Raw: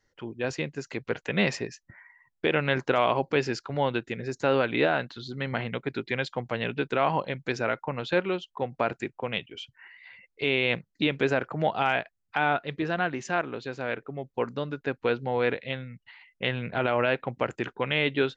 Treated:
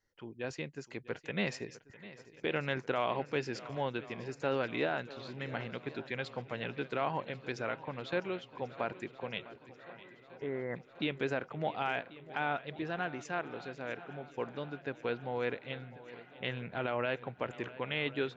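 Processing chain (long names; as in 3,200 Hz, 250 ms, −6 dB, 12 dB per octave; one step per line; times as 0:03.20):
0:09.44–0:10.76: Chebyshev low-pass filter 2,000 Hz, order 8
on a send: feedback echo with a long and a short gap by turns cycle 1,088 ms, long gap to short 1.5 to 1, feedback 60%, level −17.5 dB
on the sum: level −9 dB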